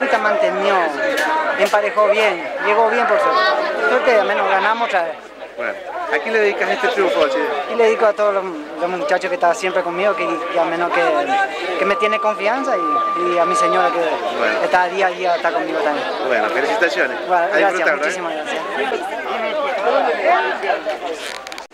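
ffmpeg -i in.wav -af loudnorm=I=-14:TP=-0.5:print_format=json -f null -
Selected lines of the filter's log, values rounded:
"input_i" : "-17.5",
"input_tp" : "-4.9",
"input_lra" : "3.7",
"input_thresh" : "-27.5",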